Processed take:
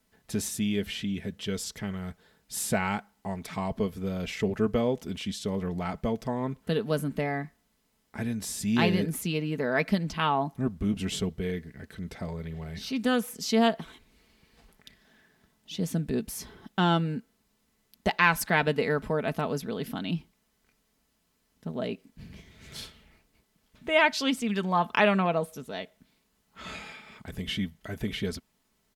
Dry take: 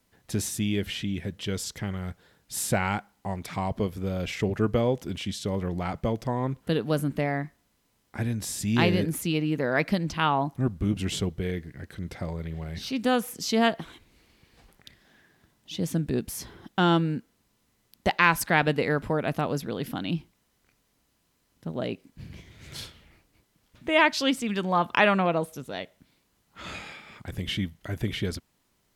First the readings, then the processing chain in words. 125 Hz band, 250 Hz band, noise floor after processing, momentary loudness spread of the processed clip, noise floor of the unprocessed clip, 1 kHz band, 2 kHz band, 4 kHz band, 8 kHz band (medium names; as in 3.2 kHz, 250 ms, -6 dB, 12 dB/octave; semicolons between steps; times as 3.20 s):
-3.5 dB, -1.0 dB, -73 dBFS, 17 LU, -71 dBFS, -2.0 dB, -1.5 dB, -2.0 dB, -1.5 dB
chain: comb 4.6 ms, depth 44%; trim -2.5 dB